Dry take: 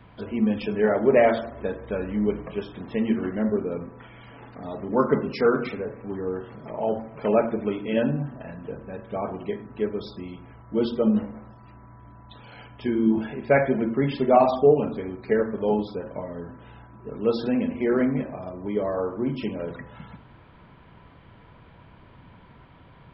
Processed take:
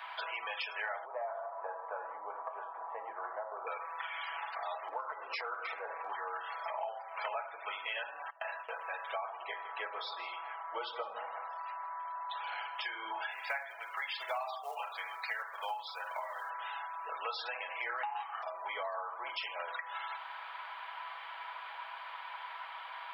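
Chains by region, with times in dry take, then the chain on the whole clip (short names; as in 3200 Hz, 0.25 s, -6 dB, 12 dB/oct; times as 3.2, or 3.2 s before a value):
1.05–3.67 compressor 2:1, threshold -27 dBFS + LPF 1100 Hz 24 dB/oct + mismatched tape noise reduction decoder only
4.88–6.12 HPF 52 Hz + tilt -4.5 dB/oct + compressor 5:1, threshold -22 dBFS
8.3–8.82 gate with hold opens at -28 dBFS, closes at -36 dBFS + doubler 17 ms -13 dB
9.39–12.75 LPF 4100 Hz + tilt -2.5 dB/oct + echo 0.161 s -16.5 dB
13.31–16.5 Bessel high-pass 780 Hz + companded quantiser 8-bit
18.03–18.43 high shelf 2400 Hz +11.5 dB + ring modulator 580 Hz
whole clip: steep high-pass 770 Hz 36 dB/oct; comb 6.1 ms, depth 36%; compressor 8:1, threshold -48 dBFS; gain +11.5 dB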